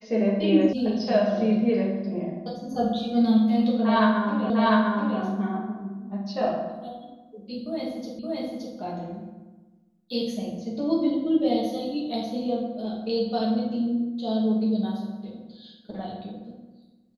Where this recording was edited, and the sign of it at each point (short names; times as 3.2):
0.73 sound cut off
4.5 repeat of the last 0.7 s
8.19 repeat of the last 0.57 s